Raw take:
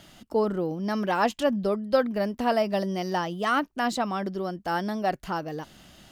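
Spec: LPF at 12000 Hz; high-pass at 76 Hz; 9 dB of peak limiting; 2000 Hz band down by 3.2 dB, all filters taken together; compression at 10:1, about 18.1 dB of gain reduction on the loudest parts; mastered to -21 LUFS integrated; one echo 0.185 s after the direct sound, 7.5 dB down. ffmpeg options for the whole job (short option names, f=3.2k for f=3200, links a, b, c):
-af "highpass=76,lowpass=12k,equalizer=f=2k:t=o:g=-4.5,acompressor=threshold=-36dB:ratio=10,alimiter=level_in=10.5dB:limit=-24dB:level=0:latency=1,volume=-10.5dB,aecho=1:1:185:0.422,volume=21.5dB"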